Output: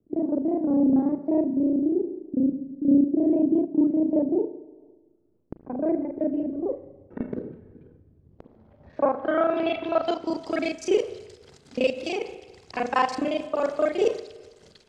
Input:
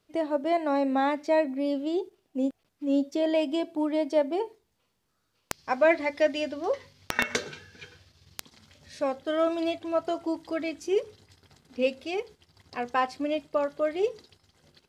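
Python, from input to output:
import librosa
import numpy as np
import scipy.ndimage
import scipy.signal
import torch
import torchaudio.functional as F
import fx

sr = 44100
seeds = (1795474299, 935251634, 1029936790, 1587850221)

y = fx.local_reverse(x, sr, ms=32.0)
y = fx.filter_sweep_lowpass(y, sr, from_hz=320.0, to_hz=7800.0, start_s=8.1, end_s=10.56, q=1.6)
y = fx.rev_spring(y, sr, rt60_s=1.3, pass_ms=(35, 41), chirp_ms=25, drr_db=11.5)
y = fx.am_noise(y, sr, seeds[0], hz=5.7, depth_pct=55)
y = y * 10.0 ** (7.0 / 20.0)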